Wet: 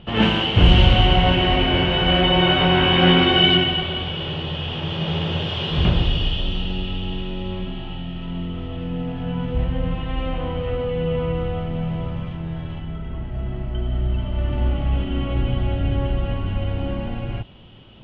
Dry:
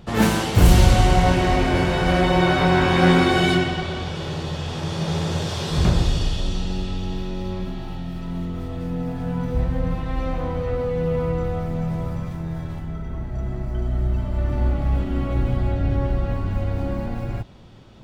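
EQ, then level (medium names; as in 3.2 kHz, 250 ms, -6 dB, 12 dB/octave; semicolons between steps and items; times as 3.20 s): resonant low-pass 3 kHz, resonance Q 10; treble shelf 2.2 kHz -9 dB; 0.0 dB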